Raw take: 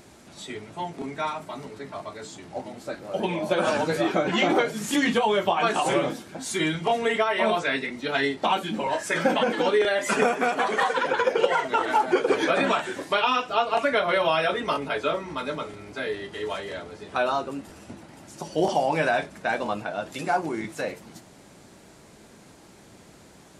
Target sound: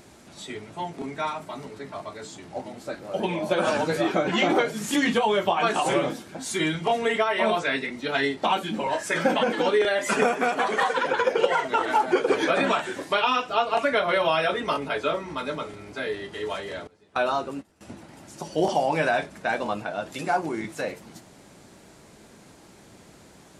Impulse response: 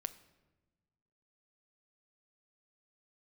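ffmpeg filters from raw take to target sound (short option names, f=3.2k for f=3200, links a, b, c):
-filter_complex "[0:a]asettb=1/sr,asplit=3[a][b][c];[a]atrim=end=16.874[d];[b]atrim=start=16.87:end=17.81,asetpts=PTS-STARTPTS,afade=t=in:d=0.004:c=qsin,afade=t=out:st=0.936:d=0.004:c=qsin,agate=range=-18dB:threshold=-33dB:ratio=16:detection=peak[e];[c]atrim=start=17.806[f];[d][e]acrossfade=d=0.004:c1=hsin:c2=qsin[g];[g][f]acrossfade=d=0.004:c1=qsin:c2=hsin"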